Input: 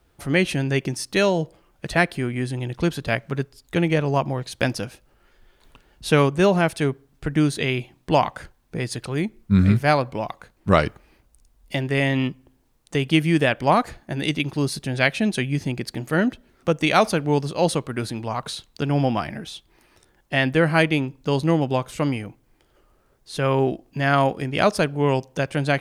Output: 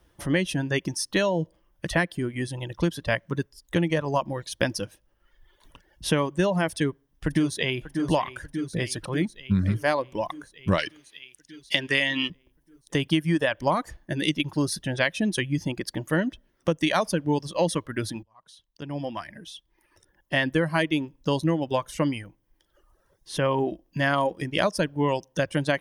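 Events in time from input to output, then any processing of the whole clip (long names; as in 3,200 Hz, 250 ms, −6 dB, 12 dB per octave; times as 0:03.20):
0:06.71–0:07.80: delay throw 590 ms, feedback 70%, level −9.5 dB
0:10.78–0:12.30: meter weighting curve D
0:18.23–0:20.64: fade in
whole clip: reverb reduction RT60 1.1 s; EQ curve with evenly spaced ripples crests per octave 1.2, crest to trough 6 dB; downward compressor 6 to 1, threshold −19 dBFS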